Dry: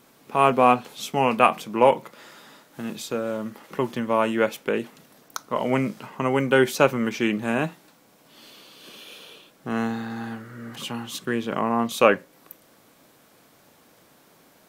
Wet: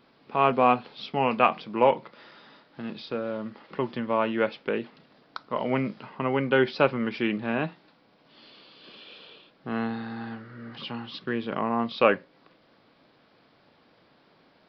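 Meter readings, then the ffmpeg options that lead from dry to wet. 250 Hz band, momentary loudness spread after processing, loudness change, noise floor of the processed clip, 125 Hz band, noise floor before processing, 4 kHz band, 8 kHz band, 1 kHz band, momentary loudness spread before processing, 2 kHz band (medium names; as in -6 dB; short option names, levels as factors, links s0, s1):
-3.5 dB, 17 LU, -3.5 dB, -62 dBFS, -3.5 dB, -57 dBFS, -3.5 dB, under -30 dB, -3.5 dB, 18 LU, -3.5 dB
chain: -af "aresample=11025,aresample=44100,volume=0.668"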